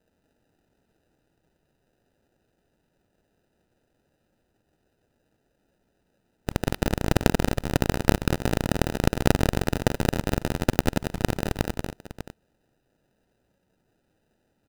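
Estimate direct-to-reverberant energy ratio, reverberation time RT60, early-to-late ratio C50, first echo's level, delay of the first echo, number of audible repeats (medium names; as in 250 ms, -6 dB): no reverb, no reverb, no reverb, -6.0 dB, 184 ms, 2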